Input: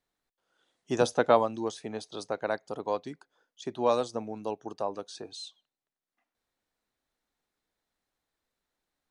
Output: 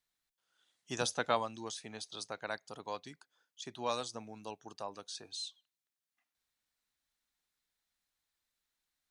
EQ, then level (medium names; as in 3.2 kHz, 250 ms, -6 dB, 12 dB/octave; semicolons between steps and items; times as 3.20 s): amplifier tone stack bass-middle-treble 5-5-5; +7.5 dB